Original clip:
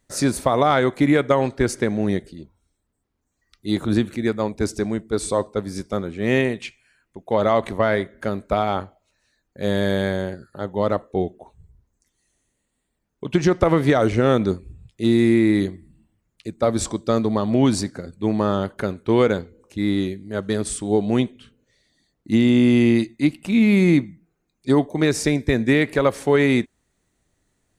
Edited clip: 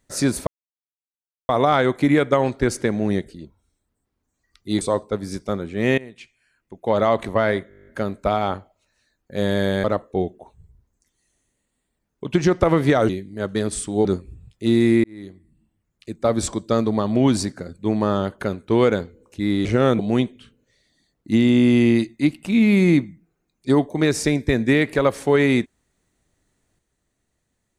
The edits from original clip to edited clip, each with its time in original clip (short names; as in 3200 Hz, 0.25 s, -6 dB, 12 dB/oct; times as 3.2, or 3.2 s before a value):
0.47 insert silence 1.02 s
3.79–5.25 cut
6.42–7.3 fade in, from -20.5 dB
8.13 stutter 0.02 s, 10 plays
10.1–10.84 cut
14.09–14.43 swap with 20.03–20.99
15.42–16.61 fade in